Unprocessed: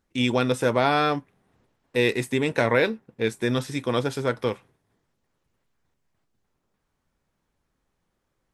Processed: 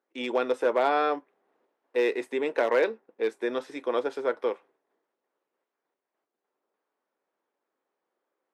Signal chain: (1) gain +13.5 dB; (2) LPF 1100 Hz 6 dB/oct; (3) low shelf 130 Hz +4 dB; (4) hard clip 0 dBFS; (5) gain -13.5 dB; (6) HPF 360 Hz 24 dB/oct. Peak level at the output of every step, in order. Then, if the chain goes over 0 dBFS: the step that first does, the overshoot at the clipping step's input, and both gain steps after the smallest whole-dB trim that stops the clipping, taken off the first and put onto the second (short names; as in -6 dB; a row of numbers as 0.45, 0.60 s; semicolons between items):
+6.5, +4.0, +4.0, 0.0, -13.5, -11.5 dBFS; step 1, 4.0 dB; step 1 +9.5 dB, step 5 -9.5 dB